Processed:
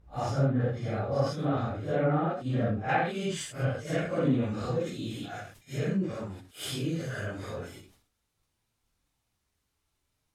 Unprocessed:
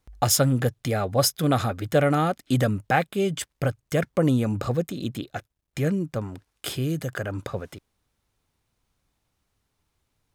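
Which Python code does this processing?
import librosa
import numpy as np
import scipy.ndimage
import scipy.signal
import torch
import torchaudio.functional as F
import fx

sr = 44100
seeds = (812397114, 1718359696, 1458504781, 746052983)

y = fx.phase_scramble(x, sr, seeds[0], window_ms=200)
y = fx.env_lowpass_down(y, sr, base_hz=2400.0, full_db=-16.5)
y = fx.high_shelf(y, sr, hz=2100.0, db=fx.steps((0.0, -8.5), (2.88, 4.0)))
y = fx.sustainer(y, sr, db_per_s=100.0)
y = y * librosa.db_to_amplitude(-5.5)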